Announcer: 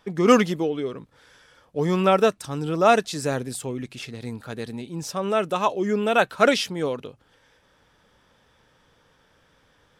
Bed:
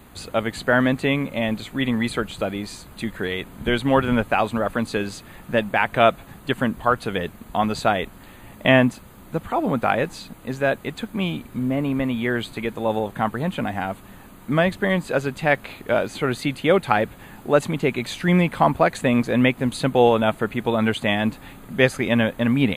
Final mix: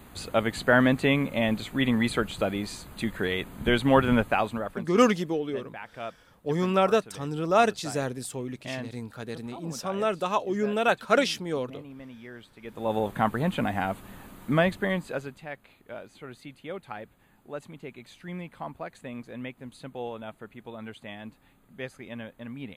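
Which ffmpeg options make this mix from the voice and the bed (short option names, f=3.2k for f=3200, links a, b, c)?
-filter_complex "[0:a]adelay=4700,volume=-4dB[a];[1:a]volume=17dB,afade=t=out:st=4.13:d=0.77:silence=0.112202,afade=t=in:st=12.61:d=0.45:silence=0.112202,afade=t=out:st=14.4:d=1.06:silence=0.125893[b];[a][b]amix=inputs=2:normalize=0"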